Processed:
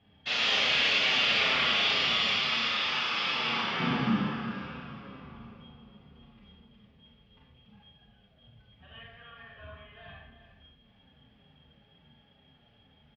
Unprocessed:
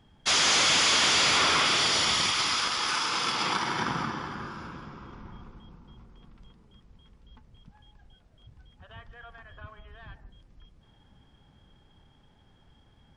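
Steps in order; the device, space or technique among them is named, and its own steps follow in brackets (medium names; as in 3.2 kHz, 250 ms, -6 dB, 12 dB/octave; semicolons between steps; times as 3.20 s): barber-pole flanger into a guitar amplifier (endless flanger 6.9 ms -2.2 Hz; saturation -26 dBFS, distortion -12 dB; cabinet simulation 85–3900 Hz, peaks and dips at 100 Hz -4 dB, 330 Hz -9 dB, 960 Hz -8 dB, 1.4 kHz -5 dB, 2.7 kHz +6 dB); 3.80–4.24 s: peaking EQ 210 Hz +12 dB 1.4 oct; echo from a far wall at 61 m, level -11 dB; Schroeder reverb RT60 0.7 s, combs from 27 ms, DRR -3.5 dB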